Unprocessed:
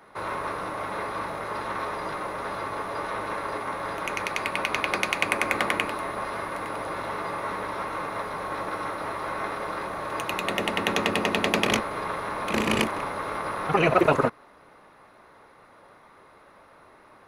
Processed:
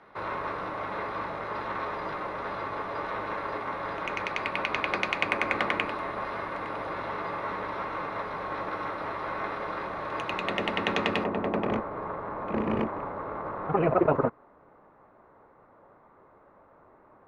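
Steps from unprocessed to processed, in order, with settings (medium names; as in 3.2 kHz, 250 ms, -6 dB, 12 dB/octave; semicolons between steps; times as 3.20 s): low-pass 3.8 kHz 12 dB/octave, from 11.24 s 1.1 kHz; trim -2 dB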